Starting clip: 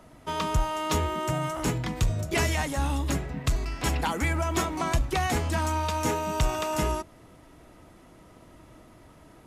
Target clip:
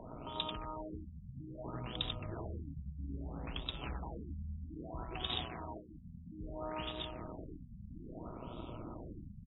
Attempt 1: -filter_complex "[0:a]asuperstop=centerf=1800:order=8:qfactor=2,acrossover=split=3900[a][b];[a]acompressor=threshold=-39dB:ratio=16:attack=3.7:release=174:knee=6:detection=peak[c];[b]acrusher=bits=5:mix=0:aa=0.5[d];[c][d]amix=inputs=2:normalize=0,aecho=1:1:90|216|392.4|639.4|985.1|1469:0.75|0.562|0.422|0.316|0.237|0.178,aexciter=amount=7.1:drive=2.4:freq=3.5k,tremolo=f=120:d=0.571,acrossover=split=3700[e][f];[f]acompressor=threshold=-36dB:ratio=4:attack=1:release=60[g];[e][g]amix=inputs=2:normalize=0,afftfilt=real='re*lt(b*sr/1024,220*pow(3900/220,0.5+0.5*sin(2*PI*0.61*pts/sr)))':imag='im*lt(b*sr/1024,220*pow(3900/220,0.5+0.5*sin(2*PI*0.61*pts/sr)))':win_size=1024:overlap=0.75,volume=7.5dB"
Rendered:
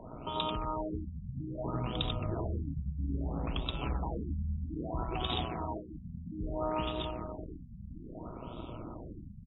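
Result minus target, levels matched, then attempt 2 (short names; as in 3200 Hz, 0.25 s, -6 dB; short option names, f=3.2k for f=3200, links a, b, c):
compressor: peak gain reduction -8.5 dB
-filter_complex "[0:a]asuperstop=centerf=1800:order=8:qfactor=2,acrossover=split=3900[a][b];[a]acompressor=threshold=-48dB:ratio=16:attack=3.7:release=174:knee=6:detection=peak[c];[b]acrusher=bits=5:mix=0:aa=0.5[d];[c][d]amix=inputs=2:normalize=0,aecho=1:1:90|216|392.4|639.4|985.1|1469:0.75|0.562|0.422|0.316|0.237|0.178,aexciter=amount=7.1:drive=2.4:freq=3.5k,tremolo=f=120:d=0.571,acrossover=split=3700[e][f];[f]acompressor=threshold=-36dB:ratio=4:attack=1:release=60[g];[e][g]amix=inputs=2:normalize=0,afftfilt=real='re*lt(b*sr/1024,220*pow(3900/220,0.5+0.5*sin(2*PI*0.61*pts/sr)))':imag='im*lt(b*sr/1024,220*pow(3900/220,0.5+0.5*sin(2*PI*0.61*pts/sr)))':win_size=1024:overlap=0.75,volume=7.5dB"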